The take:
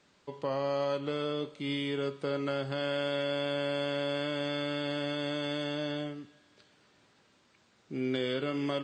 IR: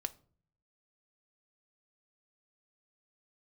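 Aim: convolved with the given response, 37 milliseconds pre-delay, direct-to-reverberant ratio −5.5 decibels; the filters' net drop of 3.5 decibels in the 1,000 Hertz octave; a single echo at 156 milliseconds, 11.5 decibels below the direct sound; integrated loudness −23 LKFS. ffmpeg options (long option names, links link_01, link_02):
-filter_complex "[0:a]equalizer=frequency=1000:width_type=o:gain=-5,aecho=1:1:156:0.266,asplit=2[link_01][link_02];[1:a]atrim=start_sample=2205,adelay=37[link_03];[link_02][link_03]afir=irnorm=-1:irlink=0,volume=6dB[link_04];[link_01][link_04]amix=inputs=2:normalize=0,volume=4.5dB"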